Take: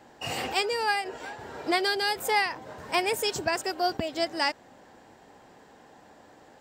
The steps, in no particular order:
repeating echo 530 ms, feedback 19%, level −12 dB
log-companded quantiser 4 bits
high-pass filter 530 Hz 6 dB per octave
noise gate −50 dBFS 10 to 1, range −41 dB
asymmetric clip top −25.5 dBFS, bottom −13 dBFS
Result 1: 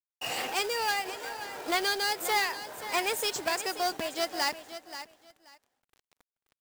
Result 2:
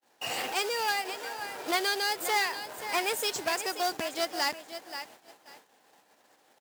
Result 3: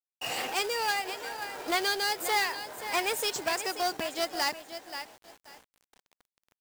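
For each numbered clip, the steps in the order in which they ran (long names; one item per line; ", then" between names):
noise gate, then asymmetric clip, then high-pass filter, then log-companded quantiser, then repeating echo
log-companded quantiser, then repeating echo, then asymmetric clip, then high-pass filter, then noise gate
repeating echo, then asymmetric clip, then noise gate, then high-pass filter, then log-companded quantiser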